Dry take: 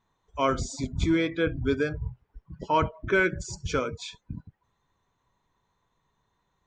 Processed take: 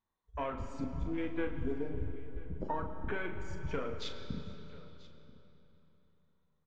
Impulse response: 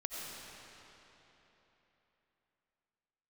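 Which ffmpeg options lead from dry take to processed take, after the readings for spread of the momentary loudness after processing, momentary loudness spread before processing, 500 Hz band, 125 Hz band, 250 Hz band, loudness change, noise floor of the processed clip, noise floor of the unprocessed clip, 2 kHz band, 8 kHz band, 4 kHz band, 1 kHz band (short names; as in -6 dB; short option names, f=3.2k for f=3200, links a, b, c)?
14 LU, 17 LU, -11.5 dB, -9.0 dB, -10.0 dB, -12.5 dB, -76 dBFS, -76 dBFS, -14.5 dB, -21.0 dB, -11.0 dB, -12.0 dB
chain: -filter_complex "[0:a]aeval=exprs='(tanh(5.62*val(0)+0.5)-tanh(0.5))/5.62':c=same,acompressor=threshold=-38dB:ratio=10,flanger=delay=3.4:depth=1.1:regen=-51:speed=1.5:shape=sinusoidal,afwtdn=0.00282,asplit=2[a][b];[b]adelay=39,volume=-8.5dB[c];[a][c]amix=inputs=2:normalize=0,aecho=1:1:986:0.1,asplit=2[d][e];[1:a]atrim=start_sample=2205,lowpass=5.3k[f];[e][f]afir=irnorm=-1:irlink=0,volume=-4dB[g];[d][g]amix=inputs=2:normalize=0,volume=4.5dB"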